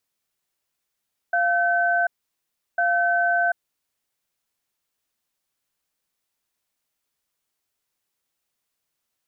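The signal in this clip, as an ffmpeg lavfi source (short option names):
-f lavfi -i "aevalsrc='0.0944*(sin(2*PI*696*t)+sin(2*PI*1530*t))*clip(min(mod(t,1.45),0.74-mod(t,1.45))/0.005,0,1)':d=2.89:s=44100"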